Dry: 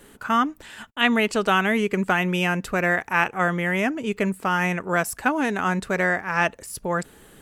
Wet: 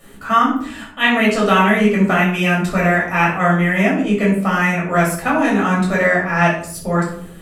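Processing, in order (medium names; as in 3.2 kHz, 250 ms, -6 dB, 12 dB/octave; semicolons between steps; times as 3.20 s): simulated room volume 670 m³, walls furnished, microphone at 6.4 m; trim -2.5 dB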